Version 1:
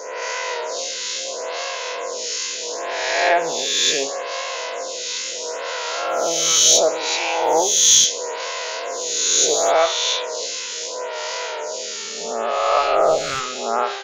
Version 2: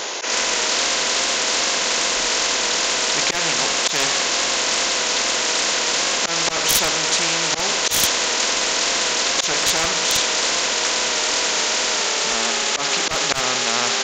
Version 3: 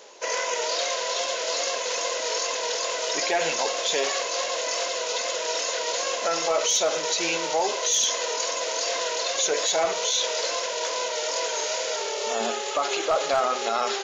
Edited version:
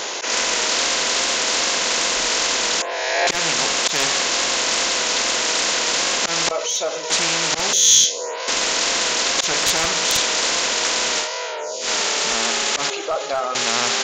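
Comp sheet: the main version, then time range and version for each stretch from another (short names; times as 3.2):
2
2.82–3.27 from 1
6.51–7.1 from 3
7.73–8.48 from 1
11.24–11.85 from 1, crossfade 0.10 s
12.9–13.55 from 3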